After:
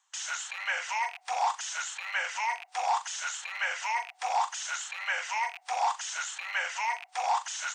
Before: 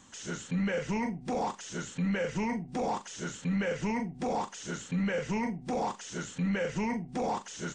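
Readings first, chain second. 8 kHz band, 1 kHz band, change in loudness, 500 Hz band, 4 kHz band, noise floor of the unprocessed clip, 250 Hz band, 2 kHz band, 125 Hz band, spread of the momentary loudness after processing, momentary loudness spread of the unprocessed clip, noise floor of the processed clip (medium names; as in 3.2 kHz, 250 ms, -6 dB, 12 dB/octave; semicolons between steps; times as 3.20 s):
+7.5 dB, +6.5 dB, +1.5 dB, -9.0 dB, +8.0 dB, -49 dBFS, under -40 dB, +7.5 dB, under -40 dB, 4 LU, 7 LU, -62 dBFS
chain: rattle on loud lows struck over -37 dBFS, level -36 dBFS; gate with hold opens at -41 dBFS; steep high-pass 730 Hz 48 dB/octave; trim +7.5 dB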